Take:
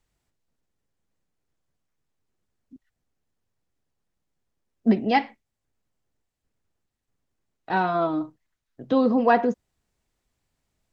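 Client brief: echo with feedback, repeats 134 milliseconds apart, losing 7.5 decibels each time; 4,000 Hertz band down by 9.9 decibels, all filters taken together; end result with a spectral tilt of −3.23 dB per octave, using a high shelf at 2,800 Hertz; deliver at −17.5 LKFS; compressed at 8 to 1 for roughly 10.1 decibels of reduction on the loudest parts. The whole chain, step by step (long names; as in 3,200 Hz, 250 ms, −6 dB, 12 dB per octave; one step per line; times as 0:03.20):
high-shelf EQ 2,800 Hz −8.5 dB
parametric band 4,000 Hz −7 dB
downward compressor 8 to 1, threshold −24 dBFS
repeating echo 134 ms, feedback 42%, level −7.5 dB
level +12.5 dB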